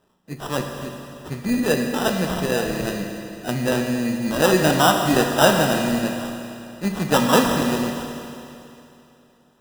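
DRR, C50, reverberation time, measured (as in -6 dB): 3.0 dB, 4.5 dB, 2.8 s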